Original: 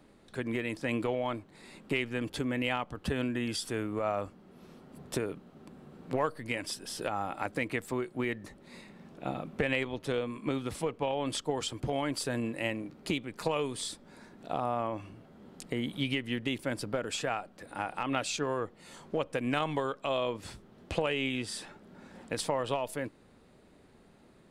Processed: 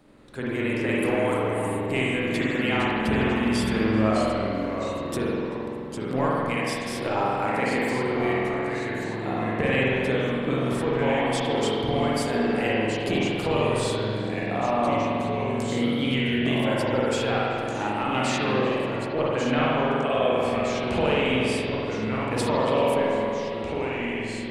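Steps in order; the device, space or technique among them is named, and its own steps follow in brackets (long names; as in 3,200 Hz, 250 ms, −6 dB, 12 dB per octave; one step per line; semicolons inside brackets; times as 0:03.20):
0:00.98–0:01.86: high shelf with overshoot 7,000 Hz +13 dB, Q 3
0:18.38–0:20.33: Butterworth low-pass 3,400 Hz
delay with pitch and tempo change per echo 173 ms, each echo −2 semitones, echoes 2, each echo −6 dB
dub delay into a spring reverb (feedback echo with a low-pass in the loop 385 ms, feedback 61%, low-pass 930 Hz, level −8 dB; spring reverb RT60 2.1 s, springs 46 ms, chirp 35 ms, DRR −5.5 dB)
level +1.5 dB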